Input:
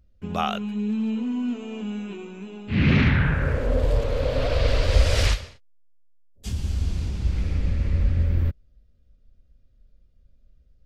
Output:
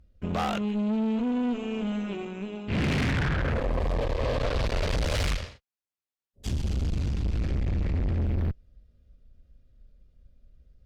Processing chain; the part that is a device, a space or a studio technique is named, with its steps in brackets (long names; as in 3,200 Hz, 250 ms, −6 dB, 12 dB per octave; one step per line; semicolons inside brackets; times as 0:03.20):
tube preamp driven hard (tube saturation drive 30 dB, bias 0.7; high-shelf EQ 6,400 Hz −7 dB)
0:03.61–0:04.42: notch filter 1,400 Hz, Q 5.6
level +6 dB